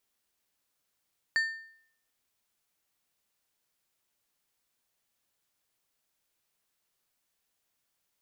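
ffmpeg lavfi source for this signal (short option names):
-f lavfi -i "aevalsrc='0.0841*pow(10,-3*t/0.63)*sin(2*PI*1800*t)+0.0224*pow(10,-3*t/0.479)*sin(2*PI*4500*t)+0.00596*pow(10,-3*t/0.416)*sin(2*PI*7200*t)+0.00158*pow(10,-3*t/0.389)*sin(2*PI*9000*t)+0.000422*pow(10,-3*t/0.359)*sin(2*PI*11700*t)':d=1.55:s=44100"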